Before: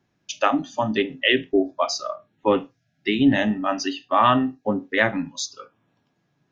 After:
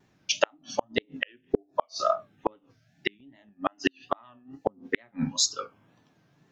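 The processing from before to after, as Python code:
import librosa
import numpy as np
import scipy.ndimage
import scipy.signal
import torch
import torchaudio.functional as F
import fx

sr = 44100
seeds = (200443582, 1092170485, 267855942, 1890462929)

y = fx.gate_flip(x, sr, shuts_db=-14.0, range_db=-42)
y = fx.wow_flutter(y, sr, seeds[0], rate_hz=2.1, depth_cents=110.0)
y = y * 10.0 ** (5.5 / 20.0)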